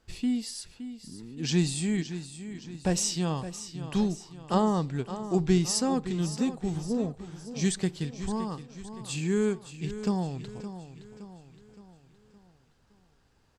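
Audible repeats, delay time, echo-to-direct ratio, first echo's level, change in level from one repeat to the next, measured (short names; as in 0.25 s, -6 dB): 4, 0.567 s, -11.0 dB, -12.0 dB, -6.5 dB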